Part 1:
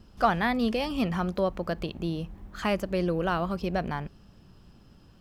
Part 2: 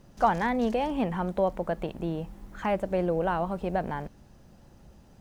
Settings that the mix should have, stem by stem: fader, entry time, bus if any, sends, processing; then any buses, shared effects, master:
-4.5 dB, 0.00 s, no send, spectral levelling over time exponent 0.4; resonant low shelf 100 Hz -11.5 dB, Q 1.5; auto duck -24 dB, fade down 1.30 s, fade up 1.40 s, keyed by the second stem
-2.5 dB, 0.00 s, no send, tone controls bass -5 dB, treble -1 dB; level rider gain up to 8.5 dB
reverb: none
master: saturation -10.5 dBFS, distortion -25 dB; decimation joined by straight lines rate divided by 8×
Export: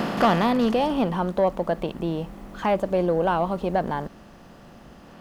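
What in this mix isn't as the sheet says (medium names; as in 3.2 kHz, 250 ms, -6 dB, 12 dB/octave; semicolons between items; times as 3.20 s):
stem 1 -4.5 dB -> +7.0 dB; master: missing decimation joined by straight lines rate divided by 8×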